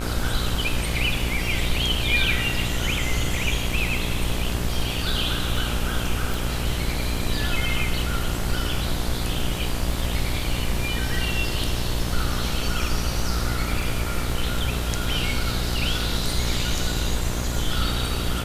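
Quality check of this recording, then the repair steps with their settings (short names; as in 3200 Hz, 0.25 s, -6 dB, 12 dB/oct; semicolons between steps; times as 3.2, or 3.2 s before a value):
buzz 60 Hz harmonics 38 -28 dBFS
crackle 22/s -32 dBFS
6.34 pop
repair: de-click; de-hum 60 Hz, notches 38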